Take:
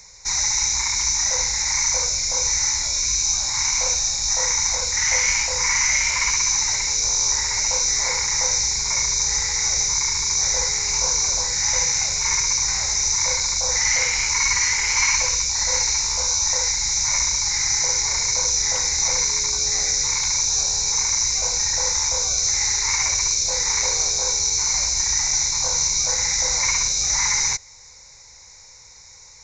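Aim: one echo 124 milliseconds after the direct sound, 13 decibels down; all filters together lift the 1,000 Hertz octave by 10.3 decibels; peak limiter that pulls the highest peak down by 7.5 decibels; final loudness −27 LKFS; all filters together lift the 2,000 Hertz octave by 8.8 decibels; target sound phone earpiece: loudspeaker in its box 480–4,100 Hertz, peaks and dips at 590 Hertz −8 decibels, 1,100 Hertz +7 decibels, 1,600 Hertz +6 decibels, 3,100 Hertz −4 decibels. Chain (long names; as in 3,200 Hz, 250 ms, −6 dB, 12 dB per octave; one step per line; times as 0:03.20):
parametric band 1,000 Hz +6 dB
parametric band 2,000 Hz +7 dB
brickwall limiter −9 dBFS
loudspeaker in its box 480–4,100 Hz, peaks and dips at 590 Hz −8 dB, 1,100 Hz +7 dB, 1,600 Hz +6 dB, 3,100 Hz −4 dB
single-tap delay 124 ms −13 dB
level −5.5 dB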